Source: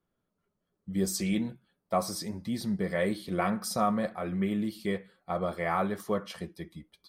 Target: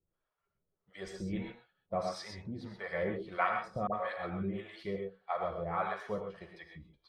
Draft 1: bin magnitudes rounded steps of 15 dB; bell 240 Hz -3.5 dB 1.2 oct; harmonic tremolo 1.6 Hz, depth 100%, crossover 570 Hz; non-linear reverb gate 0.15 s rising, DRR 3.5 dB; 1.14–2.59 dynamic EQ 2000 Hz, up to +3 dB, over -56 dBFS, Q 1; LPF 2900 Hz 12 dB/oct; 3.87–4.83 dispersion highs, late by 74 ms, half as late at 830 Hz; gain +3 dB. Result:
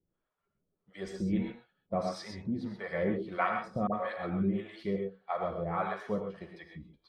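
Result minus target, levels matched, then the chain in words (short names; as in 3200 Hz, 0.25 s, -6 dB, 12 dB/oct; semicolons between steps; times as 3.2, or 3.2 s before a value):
250 Hz band +4.5 dB
bin magnitudes rounded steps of 15 dB; bell 240 Hz -13 dB 1.2 oct; harmonic tremolo 1.6 Hz, depth 100%, crossover 570 Hz; non-linear reverb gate 0.15 s rising, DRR 3.5 dB; 1.14–2.59 dynamic EQ 2000 Hz, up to +3 dB, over -56 dBFS, Q 1; LPF 2900 Hz 12 dB/oct; 3.87–4.83 dispersion highs, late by 74 ms, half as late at 830 Hz; gain +3 dB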